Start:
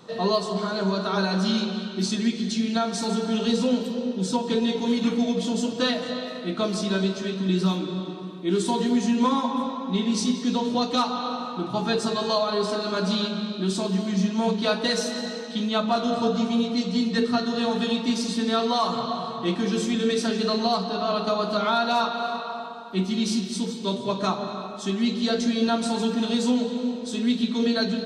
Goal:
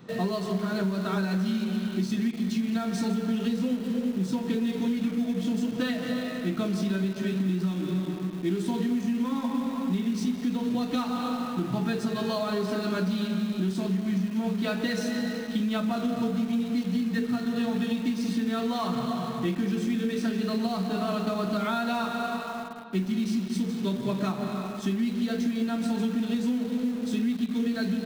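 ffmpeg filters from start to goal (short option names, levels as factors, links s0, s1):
-filter_complex "[0:a]equalizer=f=125:t=o:w=1:g=5,equalizer=f=250:t=o:w=1:g=3,equalizer=f=500:t=o:w=1:g=-4,equalizer=f=1000:t=o:w=1:g=-7,equalizer=f=2000:t=o:w=1:g=4,equalizer=f=4000:t=o:w=1:g=-7,equalizer=f=8000:t=o:w=1:g=-9,acompressor=threshold=0.0501:ratio=12,asplit=2[s0][s1];[s1]acrusher=bits=5:mix=0:aa=0.000001,volume=0.282[s2];[s0][s2]amix=inputs=2:normalize=0"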